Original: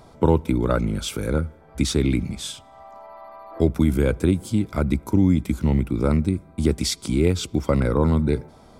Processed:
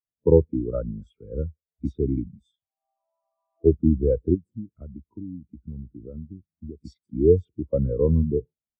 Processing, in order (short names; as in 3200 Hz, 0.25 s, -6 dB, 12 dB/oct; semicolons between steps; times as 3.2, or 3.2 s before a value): dynamic EQ 460 Hz, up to +4 dB, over -38 dBFS, Q 3.2; 4.3–6.81 compressor 8:1, threshold -21 dBFS, peak gain reduction 9.5 dB; bands offset in time highs, lows 40 ms, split 3800 Hz; spectral expander 2.5:1